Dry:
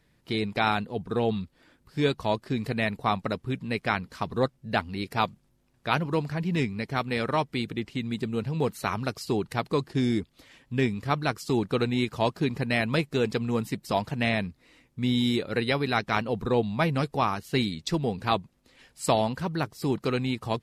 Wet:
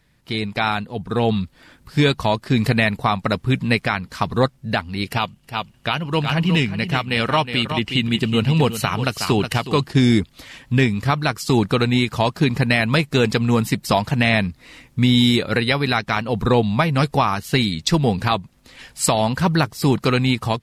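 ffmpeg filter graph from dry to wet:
ffmpeg -i in.wav -filter_complex "[0:a]asettb=1/sr,asplit=3[link_01][link_02][link_03];[link_01]atrim=end=5.074[link_04];[link_02]atrim=start=5.07:end=9.85,asetpts=PTS-STARTPTS,afade=type=in:duration=0.004:curve=qsin,afade=type=out:start_time=4.776:duration=0.004:curve=qsin,equalizer=frequency=2900:width_type=o:width=0.2:gain=12.5,aecho=1:1:366:0.299,atrim=end_sample=210798[link_05];[link_03]atrim=start=9.846[link_06];[link_04][link_05]acrossfade=duration=0.004:curve1=hsin:curve2=qsin[link_07];[link_07][link_06]acrossfade=duration=0.004:curve1=qsin:curve2=hsin,equalizer=frequency=390:width=0.92:gain=-5.5,dynaudnorm=framelen=930:gausssize=3:maxgain=11.5dB,alimiter=limit=-12dB:level=0:latency=1:release=358,volume=6dB" out.wav

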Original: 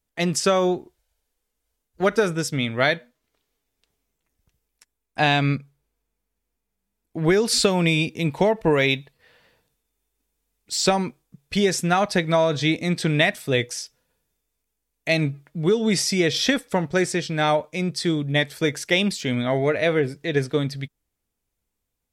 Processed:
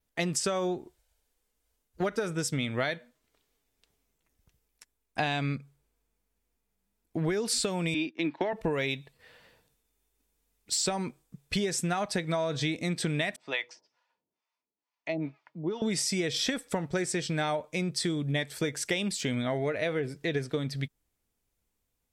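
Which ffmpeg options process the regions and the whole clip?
ffmpeg -i in.wav -filter_complex "[0:a]asettb=1/sr,asplit=3[link_01][link_02][link_03];[link_01]atrim=end=7.944[link_04];[link_02]atrim=start=7.94:end=8.53,asetpts=PTS-STARTPTS,afade=type=in:duration=0.004:curve=qsin,afade=type=out:start_time=0.586:duration=0.004:curve=qsin,agate=range=-16dB:threshold=-34dB:ratio=16:release=100:detection=peak,highpass=frequency=210:width=0.5412,highpass=frequency=210:width=1.3066,equalizer=frequency=210:width_type=q:width=4:gain=-8,equalizer=frequency=310:width_type=q:width=4:gain=9,equalizer=frequency=470:width_type=q:width=4:gain=-9,equalizer=frequency=1700:width_type=q:width=4:gain=8,lowpass=frequency=4600:width=0.5412,lowpass=frequency=4600:width=1.3066[link_05];[link_03]atrim=start=8.526[link_06];[link_04][link_05]acrossfade=duration=0.004:curve1=hsin:curve2=qsin[link_07];[link_07][link_06]acrossfade=duration=0.004:curve1=qsin:curve2=hsin,asettb=1/sr,asplit=3[link_08][link_09][link_10];[link_08]atrim=end=13.364[link_11];[link_09]atrim=start=13.36:end=15.82,asetpts=PTS-STARTPTS,afade=type=in:duration=0.004:curve=qsin,afade=type=out:start_time=2.456:duration=0.004:curve=qsin,bandreject=frequency=1600:width=16,acrossover=split=590[link_12][link_13];[link_12]aeval=exprs='val(0)*(1-1/2+1/2*cos(2*PI*2.2*n/s))':channel_layout=same[link_14];[link_13]aeval=exprs='val(0)*(1-1/2-1/2*cos(2*PI*2.2*n/s))':channel_layout=same[link_15];[link_14][link_15]amix=inputs=2:normalize=0,highpass=310,equalizer=frequency=450:width_type=q:width=4:gain=-8,equalizer=frequency=950:width_type=q:width=4:gain=8,equalizer=frequency=3700:width_type=q:width=4:gain=-5,lowpass=frequency=4900:width=0.5412,lowpass=frequency=4900:width=1.3066[link_16];[link_10]atrim=start=15.816[link_17];[link_11][link_16]acrossfade=duration=0.004:curve1=hsin:curve2=qsin[link_18];[link_18][link_17]acrossfade=duration=0.004:curve1=qsin:curve2=hsin,adynamicequalizer=threshold=0.00501:dfrequency=8100:dqfactor=3.3:tfrequency=8100:tqfactor=3.3:attack=5:release=100:ratio=0.375:range=3.5:mode=boostabove:tftype=bell,acompressor=threshold=-27dB:ratio=6" out.wav

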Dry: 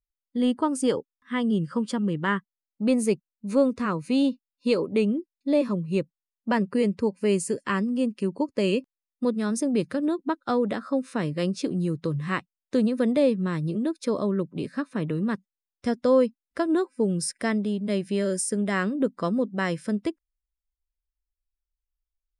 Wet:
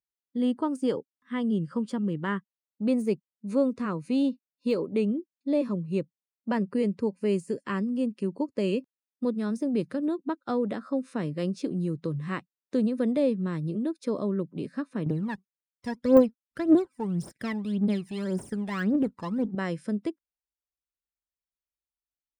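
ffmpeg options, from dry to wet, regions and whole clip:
ffmpeg -i in.wav -filter_complex "[0:a]asettb=1/sr,asplit=3[link_01][link_02][link_03];[link_01]atrim=end=15.064[link_04];[link_02]atrim=start=15.06:end=19.55,asetpts=PTS-STARTPTS,afade=type=in:duration=0.004:curve=qsin,afade=type=out:start_time=4.486:duration=0.004:curve=qsin,aeval=exprs='if(lt(val(0),0),0.447*val(0),val(0))':channel_layout=same,aphaser=in_gain=1:out_gain=1:delay=1.2:decay=0.75:speed=1.8:type=triangular[link_05];[link_03]atrim=start=19.546[link_06];[link_04][link_05]acrossfade=duration=0.004:curve1=hsin:curve2=qsin[link_07];[link_07][link_06]acrossfade=duration=0.004:curve1=qsin:curve2=hsin,highpass=120,deesser=0.75,tiltshelf=frequency=650:gain=3,volume=-4.5dB" out.wav

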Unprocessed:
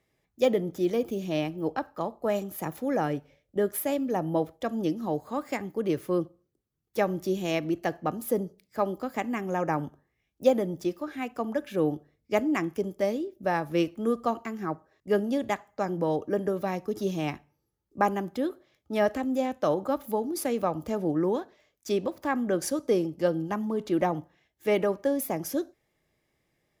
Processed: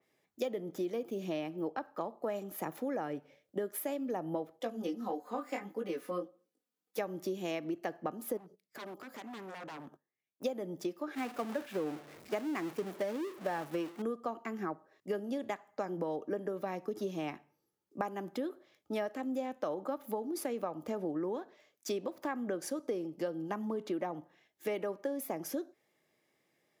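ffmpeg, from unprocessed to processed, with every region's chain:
ffmpeg -i in.wav -filter_complex "[0:a]asettb=1/sr,asplit=3[link_01][link_02][link_03];[link_01]atrim=end=4.594[link_04];[link_02]atrim=start=4.59:end=6.99,asetpts=PTS-STARTPTS,afade=type=in:duration=0.004:curve=qsin,afade=type=out:start_time=2.396:duration=0.004:curve=qsin,highpass=frequency=300:poles=1,aecho=1:1:4:0.88,atrim=end_sample=105840,flanger=delay=16.5:depth=6.7:speed=1.6[link_05];[link_03]atrim=start=6.986[link_06];[link_04][link_05]acrossfade=duration=0.004:curve1=hsin:curve2=qsin[link_07];[link_07][link_06]acrossfade=duration=0.004:curve1=qsin:curve2=hsin,asettb=1/sr,asplit=3[link_08][link_09][link_10];[link_08]atrim=end=8.374[link_11];[link_09]atrim=start=8.37:end=10.44,asetpts=PTS-STARTPTS,afade=type=in:duration=0.004:curve=qsin,afade=type=out:start_time=2.066:duration=0.004:curve=qsin,agate=range=-16dB:threshold=-57dB:ratio=16:release=100:detection=peak,acompressor=threshold=-44dB:ratio=2:attack=3.2:release=140:knee=1:detection=peak,aeval=exprs='0.0112*(abs(mod(val(0)/0.0112+3,4)-2)-1)':channel_layout=same[link_12];[link_10]atrim=start=10.436[link_13];[link_11][link_12]acrossfade=duration=0.004:curve1=hsin:curve2=qsin[link_14];[link_14][link_13]acrossfade=duration=0.004:curve1=qsin:curve2=hsin,asettb=1/sr,asplit=3[link_15][link_16][link_17];[link_15]atrim=end=11.154[link_18];[link_16]atrim=start=11.15:end=14.02,asetpts=PTS-STARTPTS,afade=type=in:duration=0.004:curve=qsin,afade=type=out:start_time=2.866:duration=0.004:curve=qsin,aeval=exprs='val(0)+0.5*0.0398*sgn(val(0))':channel_layout=same,agate=range=-33dB:threshold=-26dB:ratio=3:release=100:detection=peak[link_19];[link_17]atrim=start=14.016[link_20];[link_18][link_19]acrossfade=duration=0.004:curve1=hsin:curve2=qsin[link_21];[link_21][link_20]acrossfade=duration=0.004:curve1=qsin:curve2=hsin,highpass=220,acompressor=threshold=-33dB:ratio=6,adynamicequalizer=threshold=0.00126:dfrequency=3000:dqfactor=0.7:tfrequency=3000:tqfactor=0.7:attack=5:release=100:ratio=0.375:range=2.5:mode=cutabove:tftype=highshelf" out.wav

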